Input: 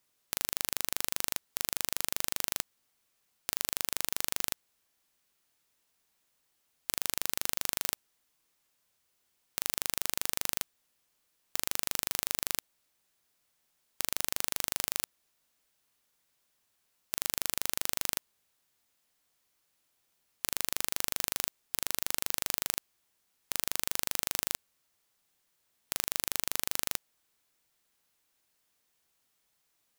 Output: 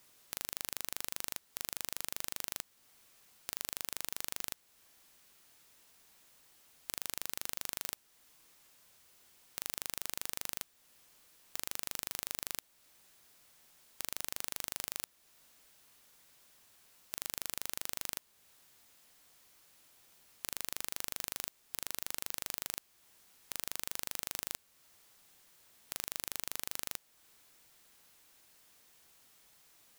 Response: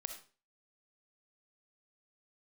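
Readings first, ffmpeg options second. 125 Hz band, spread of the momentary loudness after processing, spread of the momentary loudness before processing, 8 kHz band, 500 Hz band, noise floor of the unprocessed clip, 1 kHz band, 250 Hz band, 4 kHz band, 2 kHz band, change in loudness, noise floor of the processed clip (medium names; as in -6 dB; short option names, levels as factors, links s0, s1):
-7.0 dB, 5 LU, 5 LU, -7.0 dB, -7.0 dB, -76 dBFS, -7.0 dB, -7.0 dB, -7.0 dB, -7.0 dB, -7.0 dB, -70 dBFS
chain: -filter_complex "[0:a]asplit=2[s0][s1];[s1]acompressor=threshold=0.00631:ratio=6,volume=1.26[s2];[s0][s2]amix=inputs=2:normalize=0,asoftclip=type=tanh:threshold=0.211,volume=1.68"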